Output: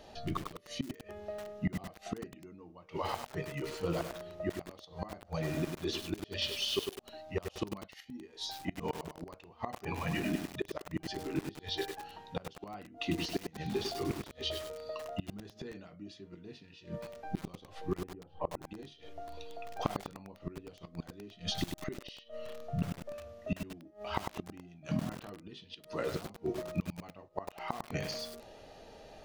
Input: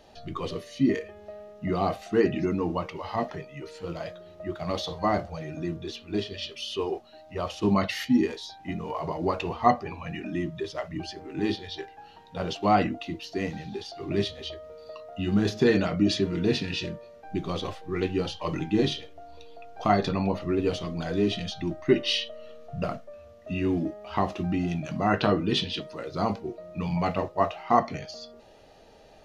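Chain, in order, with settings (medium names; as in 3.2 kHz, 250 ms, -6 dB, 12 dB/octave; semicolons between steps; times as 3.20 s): 18.02–18.66 s: low-pass 1 kHz 12 dB/octave; inverted gate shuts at -22 dBFS, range -26 dB; bit-crushed delay 100 ms, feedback 55%, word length 7-bit, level -4.5 dB; trim +1 dB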